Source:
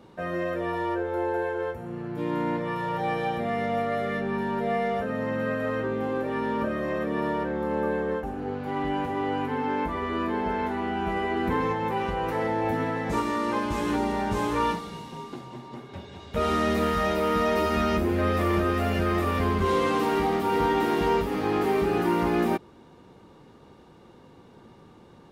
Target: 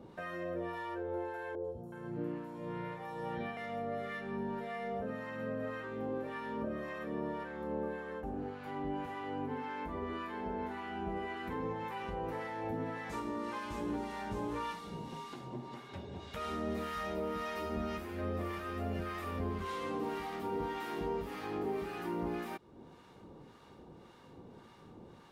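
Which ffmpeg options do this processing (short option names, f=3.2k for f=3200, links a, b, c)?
-filter_complex "[0:a]acompressor=threshold=-37dB:ratio=2.5,acrossover=split=870[a][b];[a]aeval=exprs='val(0)*(1-0.7/2+0.7/2*cos(2*PI*1.8*n/s))':c=same[c];[b]aeval=exprs='val(0)*(1-0.7/2-0.7/2*cos(2*PI*1.8*n/s))':c=same[d];[c][d]amix=inputs=2:normalize=0,asettb=1/sr,asplit=3[e][f][g];[e]atrim=end=1.554[h];[f]atrim=start=1.55:end=3.57,asetpts=PTS-STARTPTS,afade=t=in:d=0.004:c=qsin,afade=t=out:st=2.016:d=0.004:c=qsin,acrossover=split=820|4600[i][j][k];[k]adelay=90[l];[j]adelay=370[m];[i][m][l]amix=inputs=3:normalize=0,atrim=end_sample=89082[n];[g]atrim=start=3.566[o];[h][n]acrossfade=d=0.004:c1=hsin:c2=qsin[p];[p][o]acrossfade=d=0.004:c1=qsin:c2=hsin"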